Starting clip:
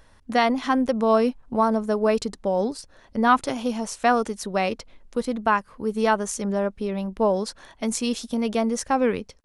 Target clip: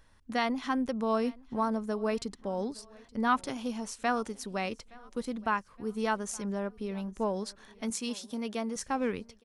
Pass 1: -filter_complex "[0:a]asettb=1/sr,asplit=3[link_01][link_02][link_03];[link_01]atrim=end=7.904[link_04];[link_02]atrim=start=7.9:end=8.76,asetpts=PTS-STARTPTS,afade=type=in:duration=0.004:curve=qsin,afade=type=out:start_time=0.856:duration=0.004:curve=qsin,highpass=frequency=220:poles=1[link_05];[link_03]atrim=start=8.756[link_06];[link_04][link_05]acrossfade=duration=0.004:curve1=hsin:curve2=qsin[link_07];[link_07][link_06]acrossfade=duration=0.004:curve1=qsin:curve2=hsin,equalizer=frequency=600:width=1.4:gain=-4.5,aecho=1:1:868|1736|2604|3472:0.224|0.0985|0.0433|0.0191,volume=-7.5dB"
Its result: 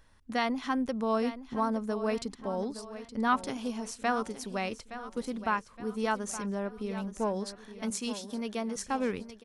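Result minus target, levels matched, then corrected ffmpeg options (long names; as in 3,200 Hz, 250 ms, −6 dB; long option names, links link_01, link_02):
echo-to-direct +11 dB
-filter_complex "[0:a]asettb=1/sr,asplit=3[link_01][link_02][link_03];[link_01]atrim=end=7.904[link_04];[link_02]atrim=start=7.9:end=8.76,asetpts=PTS-STARTPTS,afade=type=in:duration=0.004:curve=qsin,afade=type=out:start_time=0.856:duration=0.004:curve=qsin,highpass=frequency=220:poles=1[link_05];[link_03]atrim=start=8.756[link_06];[link_04][link_05]acrossfade=duration=0.004:curve1=hsin:curve2=qsin[link_07];[link_07][link_06]acrossfade=duration=0.004:curve1=qsin:curve2=hsin,equalizer=frequency=600:width=1.4:gain=-4.5,aecho=1:1:868|1736|2604:0.0631|0.0278|0.0122,volume=-7.5dB"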